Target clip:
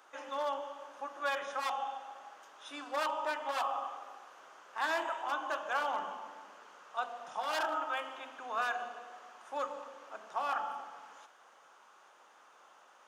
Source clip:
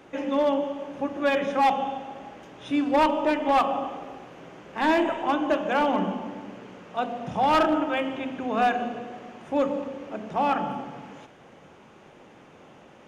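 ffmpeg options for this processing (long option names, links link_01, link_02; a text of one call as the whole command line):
ffmpeg -i in.wav -af "highpass=frequency=1300:width_type=q:width=1.8,equalizer=frequency=2200:width=0.96:gain=-14.5,afftfilt=real='re*lt(hypot(re,im),0.282)':imag='im*lt(hypot(re,im),0.282)':win_size=1024:overlap=0.75" out.wav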